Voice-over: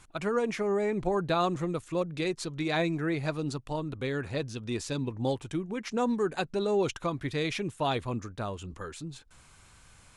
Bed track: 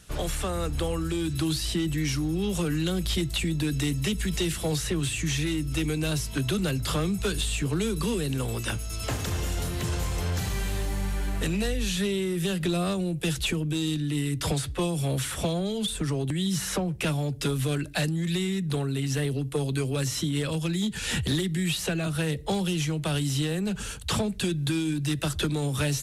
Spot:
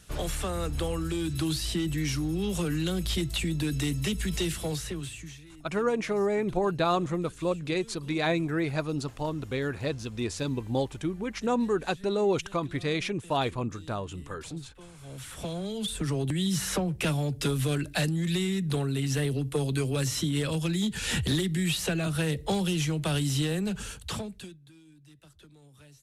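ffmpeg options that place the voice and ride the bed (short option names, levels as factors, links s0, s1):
-filter_complex "[0:a]adelay=5500,volume=1.19[s0];[1:a]volume=10.6,afade=t=out:st=4.45:d=0.96:silence=0.0891251,afade=t=in:st=14.98:d=1.24:silence=0.0749894,afade=t=out:st=23.54:d=1.05:silence=0.0421697[s1];[s0][s1]amix=inputs=2:normalize=0"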